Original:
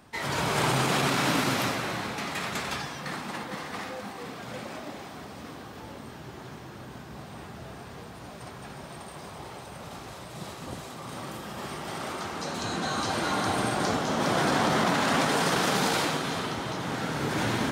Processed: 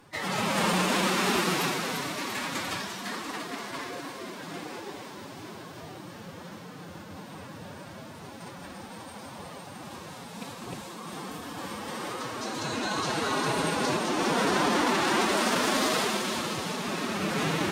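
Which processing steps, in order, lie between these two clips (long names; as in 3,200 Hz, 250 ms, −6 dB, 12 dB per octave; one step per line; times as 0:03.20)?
loose part that buzzes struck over −33 dBFS, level −27 dBFS
phase-vocoder pitch shift with formants kept +5.5 semitones
delay with a high-pass on its return 344 ms, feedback 66%, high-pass 3,600 Hz, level −6 dB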